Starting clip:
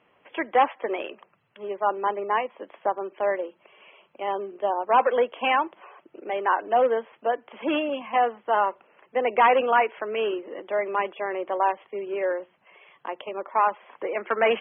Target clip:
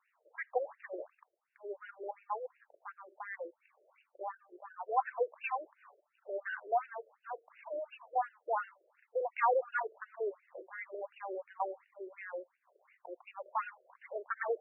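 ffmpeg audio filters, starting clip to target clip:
-filter_complex "[0:a]asettb=1/sr,asplit=3[a][b][c];[a]atrim=end=1.094[d];[b]atrim=start=1.09:end=3.12,asetpts=PTS-STARTPTS,afade=t=in:d=0.004:c=qsin,afade=t=out:st=2.026:d=0.004:c=qsin,aeval=exprs='if(lt(val(0),0),0.708*val(0),val(0))':c=same[e];[c]atrim=start=3.116[f];[d][e]acrossfade=d=0.004:c1=hsin:c2=qsin[g];[g][f]acrossfade=d=0.004:c1=qsin:c2=hsin,afftfilt=real='re*between(b*sr/1024,450*pow(2100/450,0.5+0.5*sin(2*PI*2.8*pts/sr))/1.41,450*pow(2100/450,0.5+0.5*sin(2*PI*2.8*pts/sr))*1.41)':imag='im*between(b*sr/1024,450*pow(2100/450,0.5+0.5*sin(2*PI*2.8*pts/sr))/1.41,450*pow(2100/450,0.5+0.5*sin(2*PI*2.8*pts/sr))*1.41)':win_size=1024:overlap=0.75,volume=-8.5dB"

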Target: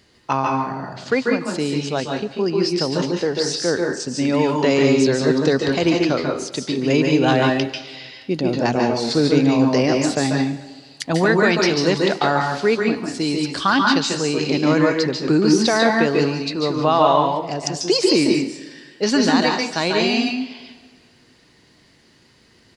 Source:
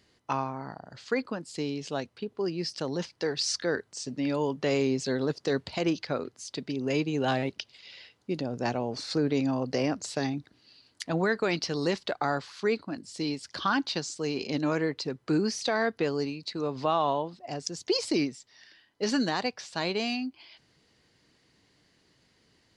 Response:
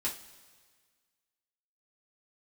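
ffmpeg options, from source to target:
-filter_complex "[0:a]asettb=1/sr,asplit=3[a][b][c];[a]atrim=end=3.134[d];[b]atrim=start=3.13:end=4,asetpts=PTS-STARTPTS,afade=t=in:d=0.004:c=qsin,afade=t=out:st=0.866:d=0.004:c=qsin,equalizer=f=3.9k:w=0.31:g=-6[e];[c]atrim=start=3.996[f];[d][e]acrossfade=d=0.004:c1=hsin:c2=qsin[g];[g][f]acrossfade=d=0.004:c1=qsin:c2=hsin,asplit=2[h][i];[i]adelay=140,highpass=300,lowpass=3.4k,asoftclip=type=hard:threshold=-24.5dB,volume=-20dB[j];[h][j]amix=inputs=2:normalize=0,asplit=2[k][l];[1:a]atrim=start_sample=2205,adelay=140[m];[l][m]afir=irnorm=-1:irlink=0,volume=-4dB[n];[k][n]amix=inputs=2:normalize=0,volume=9dB"

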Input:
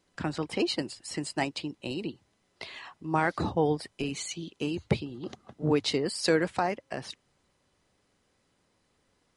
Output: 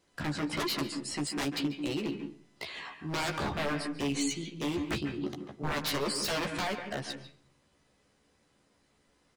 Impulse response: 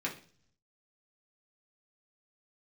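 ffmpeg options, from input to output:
-filter_complex "[0:a]aeval=exprs='0.0398*(abs(mod(val(0)/0.0398+3,4)-2)-1)':c=same,asplit=2[a][b];[b]adelay=14,volume=-4dB[c];[a][c]amix=inputs=2:normalize=0,asplit=2[d][e];[1:a]atrim=start_sample=2205,highshelf=f=5.3k:g=-11,adelay=141[f];[e][f]afir=irnorm=-1:irlink=0,volume=-11dB[g];[d][g]amix=inputs=2:normalize=0"

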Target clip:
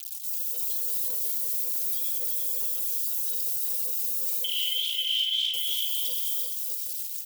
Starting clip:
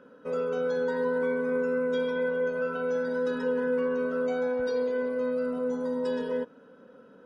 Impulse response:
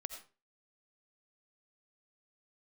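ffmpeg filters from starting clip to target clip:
-filter_complex "[0:a]acrusher=bits=7:mix=0:aa=0.000001,aemphasis=mode=production:type=50fm,asettb=1/sr,asplit=3[a][b][c];[a]atrim=end=4.444[d];[b]atrim=start=4.44:end=5.54,asetpts=PTS-STARTPTS,afade=t=in:d=0.004:c=qsin,afade=t=out:st=1.096:d=0.004:c=qsin,lowpass=f=3.1k:t=q:w=0.5098,lowpass=f=3.1k:t=q:w=0.6013,lowpass=f=3.1k:t=q:w=0.9,lowpass=f=3.1k:t=q:w=2.563,afreqshift=-3600[e];[c]atrim=start=5.536[f];[d][e]acrossfade=d=0.004:c1=hsin:c2=qsin[g];[g][f]acrossfade=d=0.004:c1=qsin:c2=hsin,highpass=860,equalizer=f=1.6k:t=o:w=1.5:g=-14,aphaser=in_gain=1:out_gain=1:delay=3.8:decay=0.76:speed=1.8:type=sinusoidal,aexciter=amount=10.3:drive=5.3:freq=2.3k,alimiter=limit=-13dB:level=0:latency=1:release=265,aecho=1:1:340|595|786.2|929.7|1037:0.631|0.398|0.251|0.158|0.1,volume=-8dB"

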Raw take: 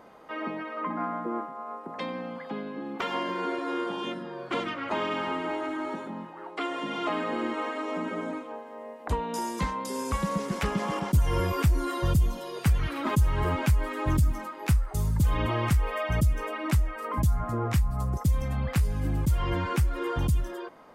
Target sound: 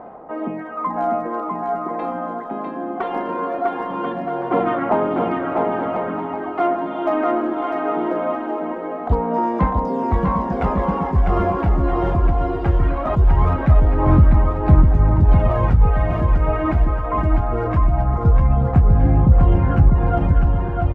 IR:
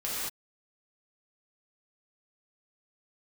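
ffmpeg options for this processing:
-filter_complex "[0:a]lowpass=1.3k,equalizer=f=730:t=o:w=0.23:g=11.5,asplit=2[a][b];[b]aeval=exprs='0.0891*(abs(mod(val(0)/0.0891+3,4)-2)-1)':c=same,volume=-9dB[c];[a][c]amix=inputs=2:normalize=0,aphaser=in_gain=1:out_gain=1:delay=3.2:decay=0.55:speed=0.21:type=sinusoidal,aecho=1:1:650|1040|1274|1414|1499:0.631|0.398|0.251|0.158|0.1,volume=2.5dB"

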